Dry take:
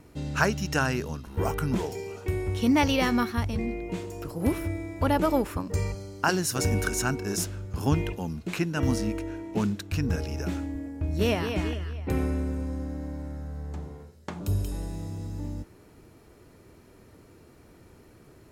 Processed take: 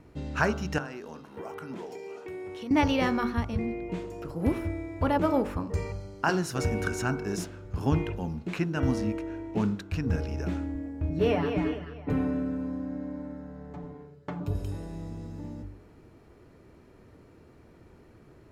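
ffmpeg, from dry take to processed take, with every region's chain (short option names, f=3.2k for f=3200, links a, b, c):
-filter_complex "[0:a]asettb=1/sr,asplit=3[a][b][c];[a]atrim=end=0.784[d];[b]atrim=start=0.78:end=2.71,asetpts=PTS-STARTPTS,afade=t=in:d=0.004:c=qsin,afade=t=out:st=1.926:d=0.004:c=qsin,highpass=260,acompressor=threshold=-35dB:ratio=4:attack=3.2:release=140:knee=1:detection=peak[e];[c]atrim=start=2.706[f];[d][e]acrossfade=d=0.004:c1=hsin:c2=qsin[g];[g][f]acrossfade=d=0.004:c1=qsin:c2=hsin,asettb=1/sr,asplit=3[h][i][j];[h]atrim=end=11.094[k];[i]atrim=start=11.09:end=14.55,asetpts=PTS-STARTPTS,afade=t=in:d=0.004:c=qsin,afade=t=out:st=3.456:d=0.004:c=qsin,equalizer=f=9.2k:w=0.31:g=-8.5,aecho=1:1:6.9:0.81,atrim=end_sample=152586[l];[j]atrim=start=14.546[m];[k][l]acrossfade=d=0.004:c1=hsin:c2=qsin[n];[n][m]acrossfade=d=0.004:c1=qsin:c2=hsin,lowpass=f=2.3k:p=1,bandreject=f=48.6:t=h:w=4,bandreject=f=97.2:t=h:w=4,bandreject=f=145.8:t=h:w=4,bandreject=f=194.4:t=h:w=4,bandreject=f=243:t=h:w=4,bandreject=f=291.6:t=h:w=4,bandreject=f=340.2:t=h:w=4,bandreject=f=388.8:t=h:w=4,bandreject=f=437.4:t=h:w=4,bandreject=f=486:t=h:w=4,bandreject=f=534.6:t=h:w=4,bandreject=f=583.2:t=h:w=4,bandreject=f=631.8:t=h:w=4,bandreject=f=680.4:t=h:w=4,bandreject=f=729:t=h:w=4,bandreject=f=777.6:t=h:w=4,bandreject=f=826.2:t=h:w=4,bandreject=f=874.8:t=h:w=4,bandreject=f=923.4:t=h:w=4,bandreject=f=972:t=h:w=4,bandreject=f=1.0206k:t=h:w=4,bandreject=f=1.0692k:t=h:w=4,bandreject=f=1.1178k:t=h:w=4,bandreject=f=1.1664k:t=h:w=4,bandreject=f=1.215k:t=h:w=4,bandreject=f=1.2636k:t=h:w=4,bandreject=f=1.3122k:t=h:w=4,bandreject=f=1.3608k:t=h:w=4,bandreject=f=1.4094k:t=h:w=4,bandreject=f=1.458k:t=h:w=4,bandreject=f=1.5066k:t=h:w=4,bandreject=f=1.5552k:t=h:w=4"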